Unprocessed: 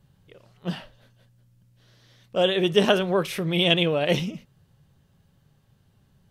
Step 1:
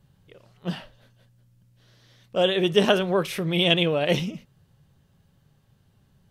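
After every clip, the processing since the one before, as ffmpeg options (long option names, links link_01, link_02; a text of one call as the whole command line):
ffmpeg -i in.wav -af anull out.wav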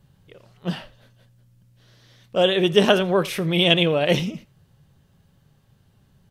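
ffmpeg -i in.wav -af "aecho=1:1:85:0.0794,volume=3dB" out.wav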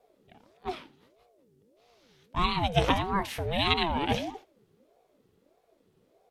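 ffmpeg -i in.wav -af "aeval=exprs='val(0)*sin(2*PI*430*n/s+430*0.4/1.6*sin(2*PI*1.6*n/s))':channel_layout=same,volume=-5.5dB" out.wav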